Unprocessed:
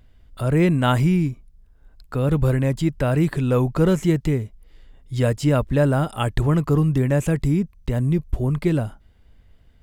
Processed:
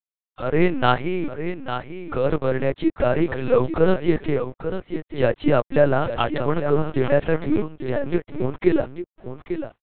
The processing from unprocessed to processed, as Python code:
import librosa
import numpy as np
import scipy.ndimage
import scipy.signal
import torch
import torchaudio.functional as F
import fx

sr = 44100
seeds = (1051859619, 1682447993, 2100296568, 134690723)

p1 = scipy.signal.sosfilt(scipy.signal.butter(4, 270.0, 'highpass', fs=sr, output='sos'), x)
p2 = fx.rider(p1, sr, range_db=5, speed_s=2.0)
p3 = p1 + F.gain(torch.from_numpy(p2), -1.0).numpy()
p4 = np.sign(p3) * np.maximum(np.abs(p3) - 10.0 ** (-37.0 / 20.0), 0.0)
p5 = fx.air_absorb(p4, sr, metres=120.0)
p6 = p5 + fx.echo_single(p5, sr, ms=849, db=-9.5, dry=0)
y = fx.lpc_vocoder(p6, sr, seeds[0], excitation='pitch_kept', order=8)